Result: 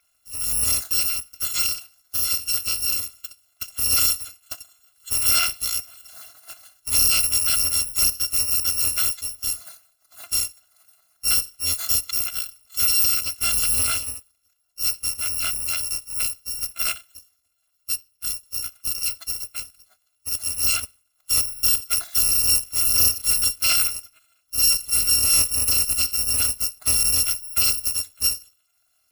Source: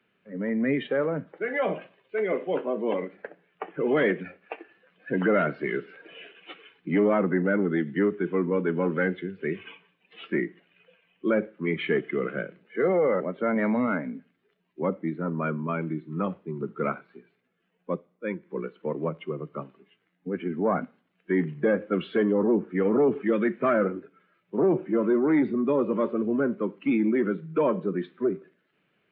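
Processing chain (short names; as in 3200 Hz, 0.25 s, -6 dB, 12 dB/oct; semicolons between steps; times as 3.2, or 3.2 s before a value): FFT order left unsorted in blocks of 256 samples; gain +3.5 dB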